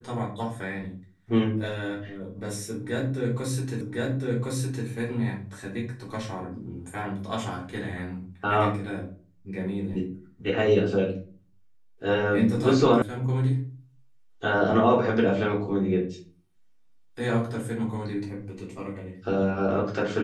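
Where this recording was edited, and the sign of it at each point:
0:03.81: the same again, the last 1.06 s
0:13.02: cut off before it has died away

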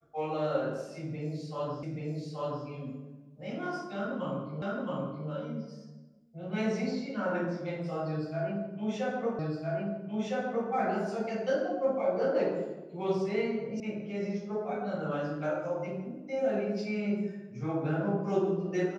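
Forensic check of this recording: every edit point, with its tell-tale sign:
0:01.83: the same again, the last 0.83 s
0:04.62: the same again, the last 0.67 s
0:09.39: the same again, the last 1.31 s
0:13.80: cut off before it has died away

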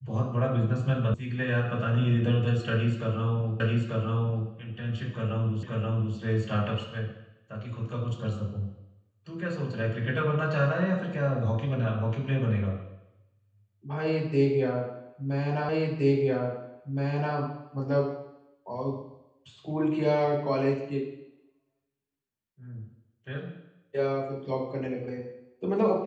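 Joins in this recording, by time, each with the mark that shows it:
0:01.14: cut off before it has died away
0:03.60: the same again, the last 0.89 s
0:05.63: the same again, the last 0.53 s
0:15.69: the same again, the last 1.67 s

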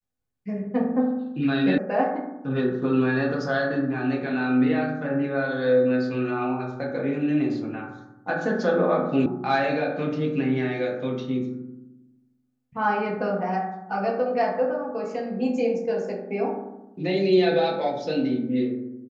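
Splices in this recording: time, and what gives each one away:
0:01.78: cut off before it has died away
0:09.26: cut off before it has died away

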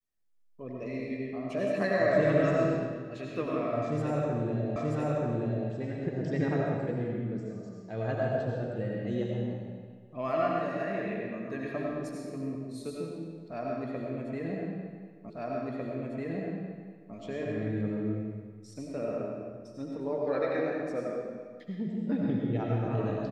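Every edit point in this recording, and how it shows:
0:04.76: the same again, the last 0.93 s
0:15.30: the same again, the last 1.85 s

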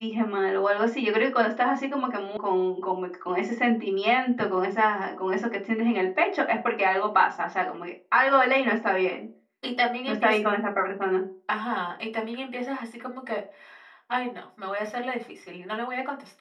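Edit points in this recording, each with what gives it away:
0:02.37: cut off before it has died away

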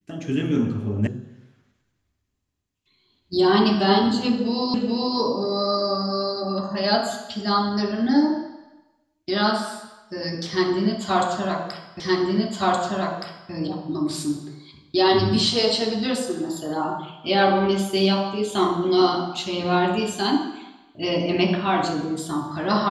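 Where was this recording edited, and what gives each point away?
0:01.07: cut off before it has died away
0:04.74: the same again, the last 0.43 s
0:12.00: the same again, the last 1.52 s

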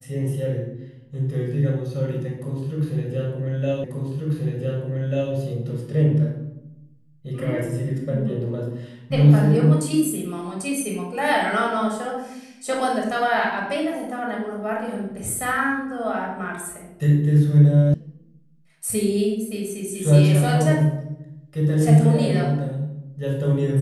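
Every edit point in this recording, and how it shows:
0:03.84: the same again, the last 1.49 s
0:17.94: cut off before it has died away

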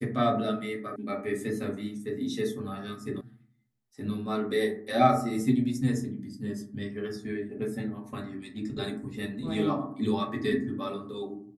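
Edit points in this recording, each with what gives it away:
0:00.96: cut off before it has died away
0:03.21: cut off before it has died away

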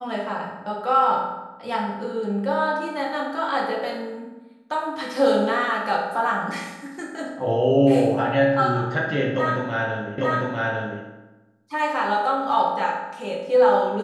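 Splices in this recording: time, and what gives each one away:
0:10.18: the same again, the last 0.85 s

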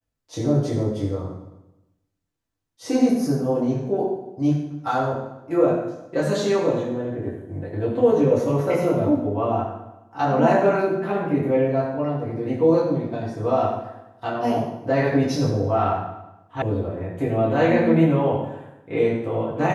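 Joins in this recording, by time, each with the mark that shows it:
0:16.62: cut off before it has died away

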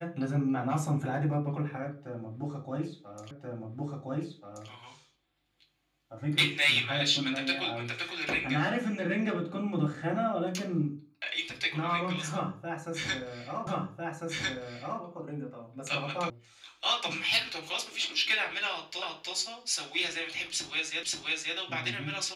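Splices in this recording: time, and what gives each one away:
0:03.31: the same again, the last 1.38 s
0:13.67: the same again, the last 1.35 s
0:16.30: cut off before it has died away
0:19.02: the same again, the last 0.32 s
0:21.03: the same again, the last 0.53 s

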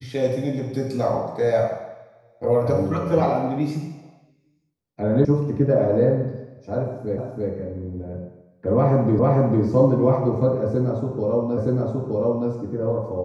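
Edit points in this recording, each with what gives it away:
0:05.25: cut off before it has died away
0:07.18: the same again, the last 0.33 s
0:09.19: the same again, the last 0.45 s
0:11.57: the same again, the last 0.92 s

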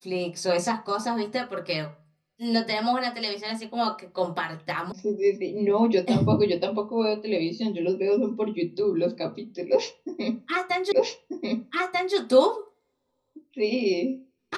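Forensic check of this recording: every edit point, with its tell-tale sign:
0:04.92: cut off before it has died away
0:10.92: the same again, the last 1.24 s

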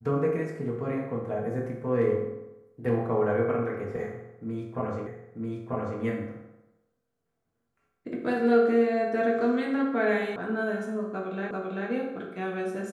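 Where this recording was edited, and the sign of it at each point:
0:05.07: the same again, the last 0.94 s
0:10.36: cut off before it has died away
0:11.51: the same again, the last 0.39 s

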